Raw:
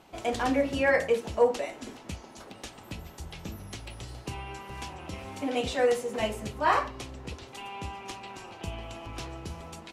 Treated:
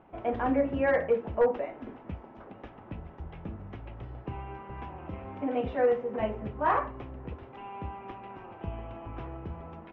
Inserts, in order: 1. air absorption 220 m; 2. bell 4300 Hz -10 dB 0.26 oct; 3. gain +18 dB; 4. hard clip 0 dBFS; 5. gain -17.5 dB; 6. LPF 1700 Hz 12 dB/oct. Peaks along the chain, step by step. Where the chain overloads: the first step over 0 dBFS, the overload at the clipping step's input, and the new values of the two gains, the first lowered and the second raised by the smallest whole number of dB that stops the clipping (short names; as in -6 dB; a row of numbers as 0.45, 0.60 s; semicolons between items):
-12.0, -12.0, +6.0, 0.0, -17.5, -17.0 dBFS; step 3, 6.0 dB; step 3 +12 dB, step 5 -11.5 dB